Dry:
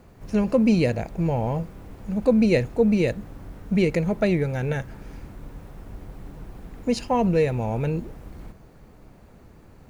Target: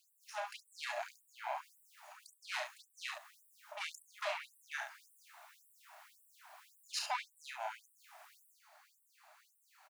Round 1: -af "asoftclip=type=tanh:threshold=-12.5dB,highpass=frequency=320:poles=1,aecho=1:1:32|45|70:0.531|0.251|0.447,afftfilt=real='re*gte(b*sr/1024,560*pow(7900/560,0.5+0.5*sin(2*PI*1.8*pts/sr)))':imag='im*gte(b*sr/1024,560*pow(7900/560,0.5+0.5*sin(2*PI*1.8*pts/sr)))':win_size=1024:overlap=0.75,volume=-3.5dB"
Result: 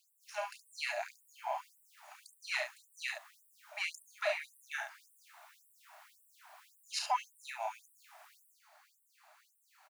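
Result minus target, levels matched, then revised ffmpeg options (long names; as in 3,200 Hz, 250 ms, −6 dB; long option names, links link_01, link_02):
soft clipping: distortion −12 dB
-af "asoftclip=type=tanh:threshold=-24.5dB,highpass=frequency=320:poles=1,aecho=1:1:32|45|70:0.531|0.251|0.447,afftfilt=real='re*gte(b*sr/1024,560*pow(7900/560,0.5+0.5*sin(2*PI*1.8*pts/sr)))':imag='im*gte(b*sr/1024,560*pow(7900/560,0.5+0.5*sin(2*PI*1.8*pts/sr)))':win_size=1024:overlap=0.75,volume=-3.5dB"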